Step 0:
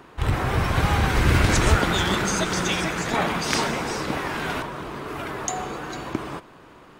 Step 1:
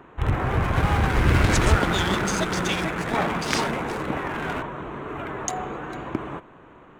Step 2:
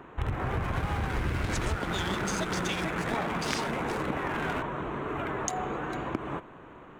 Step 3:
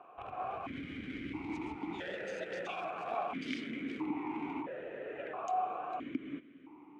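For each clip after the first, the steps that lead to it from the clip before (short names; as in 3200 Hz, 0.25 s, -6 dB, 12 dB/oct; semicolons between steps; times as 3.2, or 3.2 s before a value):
Wiener smoothing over 9 samples
compressor 6:1, threshold -27 dBFS, peak gain reduction 14 dB
vowel sequencer 1.5 Hz; gain +3.5 dB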